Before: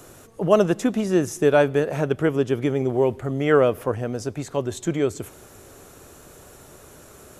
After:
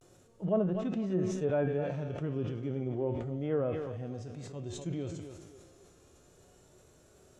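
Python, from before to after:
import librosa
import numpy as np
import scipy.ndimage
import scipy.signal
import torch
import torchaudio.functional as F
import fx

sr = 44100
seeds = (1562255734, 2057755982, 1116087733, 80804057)

p1 = scipy.signal.sosfilt(scipy.signal.butter(2, 7100.0, 'lowpass', fs=sr, output='sos'), x)
p2 = fx.peak_eq(p1, sr, hz=1400.0, db=-6.5, octaves=2.0)
p3 = p2 + fx.echo_feedback(p2, sr, ms=254, feedback_pct=32, wet_db=-12.5, dry=0)
p4 = fx.dynamic_eq(p3, sr, hz=380.0, q=4.3, threshold_db=-37.0, ratio=4.0, max_db=-4)
p5 = fx.hpss(p4, sr, part='percussive', gain_db=-13)
p6 = fx.comb_fb(p5, sr, f0_hz=180.0, decay_s=0.49, harmonics='all', damping=0.0, mix_pct=70)
p7 = fx.vibrato(p6, sr, rate_hz=0.31, depth_cents=43.0)
p8 = fx.env_lowpass_down(p7, sr, base_hz=1600.0, full_db=-26.5)
y = fx.sustainer(p8, sr, db_per_s=37.0)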